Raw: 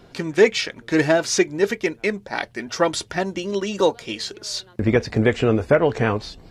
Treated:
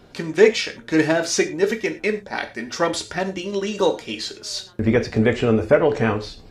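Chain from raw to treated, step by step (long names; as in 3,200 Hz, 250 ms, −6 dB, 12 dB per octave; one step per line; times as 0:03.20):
reverb whose tail is shaped and stops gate 140 ms falling, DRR 6.5 dB
level −1 dB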